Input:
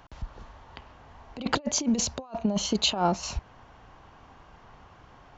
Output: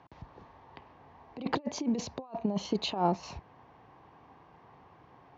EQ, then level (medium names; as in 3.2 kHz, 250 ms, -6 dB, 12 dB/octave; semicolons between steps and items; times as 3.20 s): distance through air 84 m; cabinet simulation 140–6800 Hz, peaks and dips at 220 Hz -5 dB, 600 Hz -5 dB, 1.4 kHz -9 dB, 3 kHz -4 dB; treble shelf 2.9 kHz -10 dB; 0.0 dB